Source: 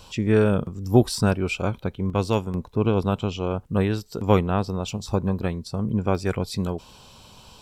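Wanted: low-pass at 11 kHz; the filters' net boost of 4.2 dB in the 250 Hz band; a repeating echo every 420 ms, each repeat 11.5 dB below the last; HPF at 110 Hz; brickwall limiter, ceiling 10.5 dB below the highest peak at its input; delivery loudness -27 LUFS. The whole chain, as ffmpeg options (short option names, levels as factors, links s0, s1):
-af "highpass=110,lowpass=11000,equalizer=f=250:t=o:g=6,alimiter=limit=0.299:level=0:latency=1,aecho=1:1:420|840|1260:0.266|0.0718|0.0194,volume=0.75"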